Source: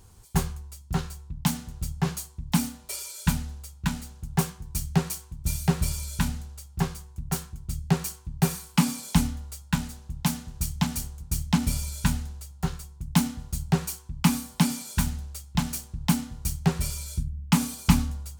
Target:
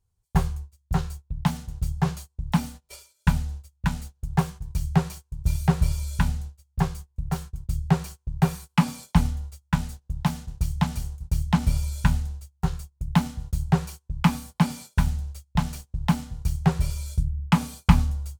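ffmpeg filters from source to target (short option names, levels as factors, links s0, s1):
-filter_complex "[0:a]acrossover=split=4500[s0][s1];[s1]acompressor=threshold=0.01:ratio=4:attack=1:release=60[s2];[s0][s2]amix=inputs=2:normalize=0,agate=range=0.0501:threshold=0.0112:ratio=16:detection=peak,equalizer=f=280:w=1.5:g=-12.5,asplit=2[s3][s4];[s4]adynamicsmooth=sensitivity=2:basefreq=670,volume=1.26[s5];[s3][s5]amix=inputs=2:normalize=0,volume=0.891"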